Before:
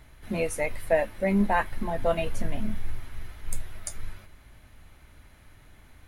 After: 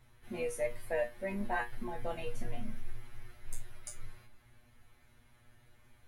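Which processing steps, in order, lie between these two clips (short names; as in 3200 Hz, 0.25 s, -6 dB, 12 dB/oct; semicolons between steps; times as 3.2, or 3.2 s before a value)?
resonator 120 Hz, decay 0.19 s, harmonics all, mix 100%; gain -1 dB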